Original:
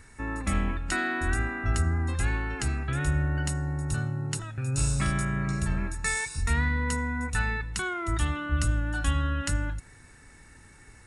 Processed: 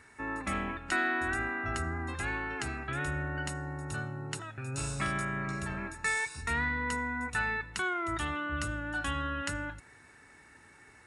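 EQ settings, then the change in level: HPF 69 Hz; tone controls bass -10 dB, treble -8 dB; notch 510 Hz, Q 13; 0.0 dB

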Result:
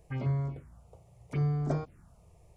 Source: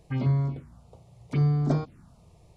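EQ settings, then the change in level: graphic EQ 125/250/1000/4000 Hz -4/-9/-4/-11 dB; 0.0 dB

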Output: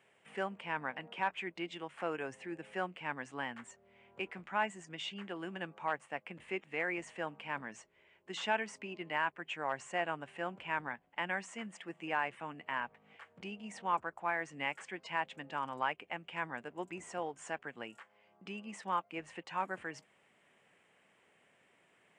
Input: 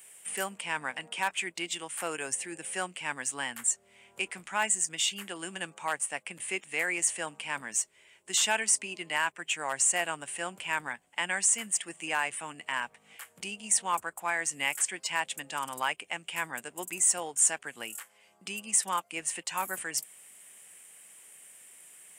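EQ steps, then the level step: tape spacing loss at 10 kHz 39 dB; +1.0 dB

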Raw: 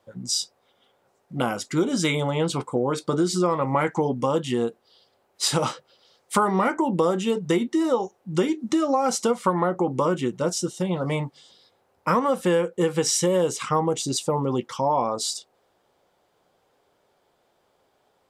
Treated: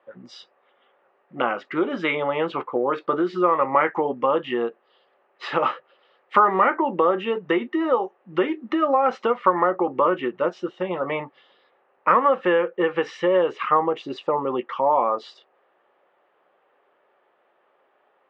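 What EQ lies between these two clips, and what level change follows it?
speaker cabinet 290–2900 Hz, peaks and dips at 370 Hz +4 dB, 570 Hz +5 dB, 840 Hz +3 dB, 1200 Hz +9 dB, 1800 Hz +9 dB, 2700 Hz +6 dB; -1.5 dB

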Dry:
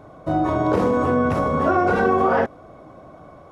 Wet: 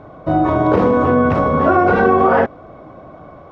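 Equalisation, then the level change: LPF 3500 Hz 12 dB/oct; +5.5 dB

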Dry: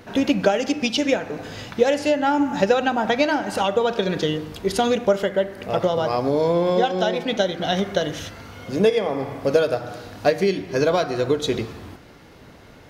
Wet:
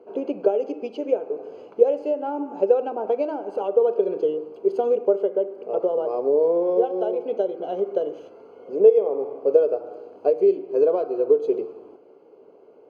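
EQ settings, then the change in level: running mean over 24 samples; resonant high-pass 420 Hz, resonance Q 4.9; -7.5 dB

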